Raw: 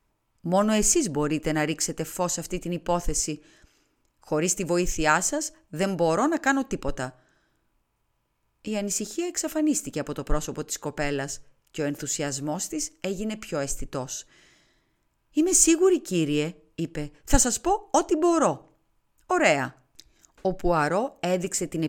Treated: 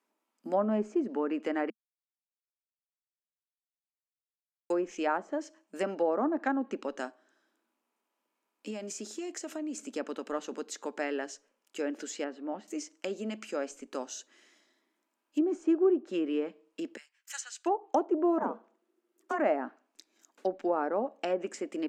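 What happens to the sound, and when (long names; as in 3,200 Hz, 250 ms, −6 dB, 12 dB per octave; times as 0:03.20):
0:01.70–0:04.70: silence
0:08.70–0:09.78: downward compressor, threshold −28 dBFS
0:12.24–0:12.68: high-frequency loss of the air 470 metres
0:16.97–0:17.66: four-pole ladder high-pass 1,300 Hz, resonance 25%
0:18.38–0:19.39: ring modulation 350 Hz
whole clip: elliptic high-pass filter 220 Hz, stop band 40 dB; treble cut that deepens with the level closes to 1,000 Hz, closed at −20 dBFS; level −4.5 dB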